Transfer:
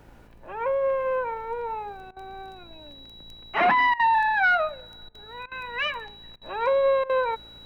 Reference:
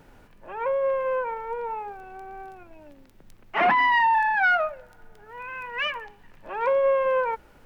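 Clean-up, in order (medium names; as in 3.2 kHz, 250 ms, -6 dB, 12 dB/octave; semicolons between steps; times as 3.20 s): de-hum 56.1 Hz, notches 18; band-stop 3.9 kHz, Q 30; interpolate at 2.11/3.94/5.09/5.46/6.36/7.04 s, 54 ms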